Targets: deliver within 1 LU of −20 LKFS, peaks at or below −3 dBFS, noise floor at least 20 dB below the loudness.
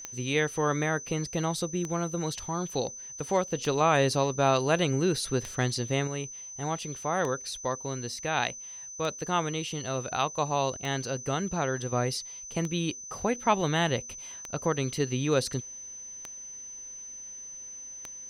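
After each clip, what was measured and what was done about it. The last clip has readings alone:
number of clicks 11; interfering tone 6,100 Hz; level of the tone −40 dBFS; integrated loudness −30.0 LKFS; sample peak −11.0 dBFS; target loudness −20.0 LKFS
→ click removal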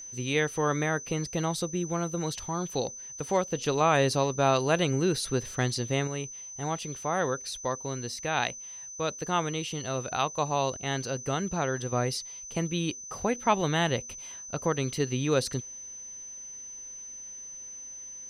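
number of clicks 0; interfering tone 6,100 Hz; level of the tone −40 dBFS
→ notch filter 6,100 Hz, Q 30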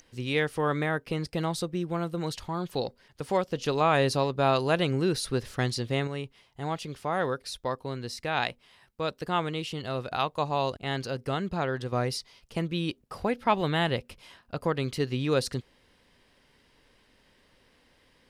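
interfering tone none found; integrated loudness −29.5 LKFS; sample peak −11.5 dBFS; target loudness −20.0 LKFS
→ level +9.5 dB
brickwall limiter −3 dBFS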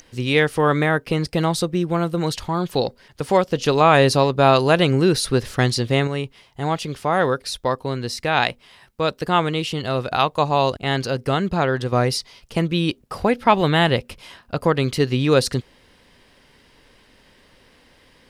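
integrated loudness −20.0 LKFS; sample peak −3.0 dBFS; background noise floor −55 dBFS

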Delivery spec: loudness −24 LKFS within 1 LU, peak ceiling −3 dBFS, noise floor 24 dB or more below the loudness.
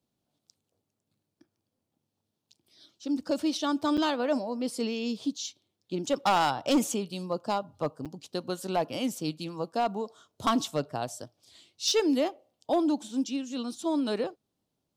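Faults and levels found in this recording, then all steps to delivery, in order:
share of clipped samples 0.4%; peaks flattened at −18.5 dBFS; number of dropouts 2; longest dropout 6.9 ms; integrated loudness −30.0 LKFS; sample peak −18.5 dBFS; target loudness −24.0 LKFS
→ clipped peaks rebuilt −18.5 dBFS
repair the gap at 0:03.97/0:08.05, 6.9 ms
level +6 dB

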